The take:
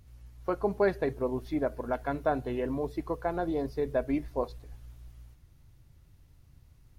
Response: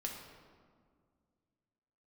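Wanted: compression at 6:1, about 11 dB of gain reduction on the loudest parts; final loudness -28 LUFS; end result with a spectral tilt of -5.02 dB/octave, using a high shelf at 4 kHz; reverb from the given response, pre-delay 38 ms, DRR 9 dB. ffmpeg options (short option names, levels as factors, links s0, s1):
-filter_complex "[0:a]highshelf=f=4000:g=-8.5,acompressor=threshold=0.02:ratio=6,asplit=2[s0][s1];[1:a]atrim=start_sample=2205,adelay=38[s2];[s1][s2]afir=irnorm=-1:irlink=0,volume=0.355[s3];[s0][s3]amix=inputs=2:normalize=0,volume=3.55"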